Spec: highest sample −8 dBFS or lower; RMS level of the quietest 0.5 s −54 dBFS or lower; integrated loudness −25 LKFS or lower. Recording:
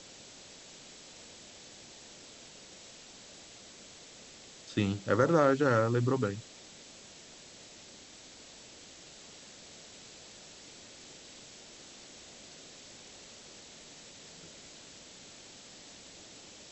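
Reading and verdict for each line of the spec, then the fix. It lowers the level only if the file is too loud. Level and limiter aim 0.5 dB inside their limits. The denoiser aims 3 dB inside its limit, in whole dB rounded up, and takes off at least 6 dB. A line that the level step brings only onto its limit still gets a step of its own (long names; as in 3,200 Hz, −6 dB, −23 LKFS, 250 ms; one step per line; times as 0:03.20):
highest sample −11.5 dBFS: in spec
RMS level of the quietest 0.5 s −52 dBFS: out of spec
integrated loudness −28.5 LKFS: in spec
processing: broadband denoise 6 dB, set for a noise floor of −52 dBFS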